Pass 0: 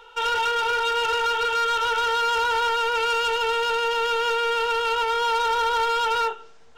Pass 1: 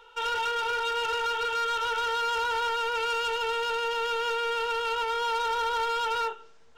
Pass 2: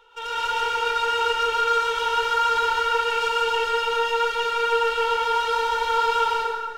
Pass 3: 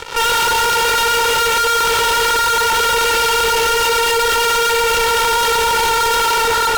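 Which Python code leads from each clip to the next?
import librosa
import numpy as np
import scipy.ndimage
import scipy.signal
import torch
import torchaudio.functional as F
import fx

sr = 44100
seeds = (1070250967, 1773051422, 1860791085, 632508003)

y1 = fx.notch(x, sr, hz=740.0, q=12.0)
y1 = F.gain(torch.from_numpy(y1), -5.5).numpy()
y2 = fx.rev_plate(y1, sr, seeds[0], rt60_s=1.9, hf_ratio=0.65, predelay_ms=100, drr_db=-7.0)
y2 = F.gain(torch.from_numpy(y2), -2.5).numpy()
y3 = fx.fuzz(y2, sr, gain_db=45.0, gate_db=-54.0)
y3 = fx.tube_stage(y3, sr, drive_db=22.0, bias=0.8)
y3 = F.gain(torch.from_numpy(y3), 7.5).numpy()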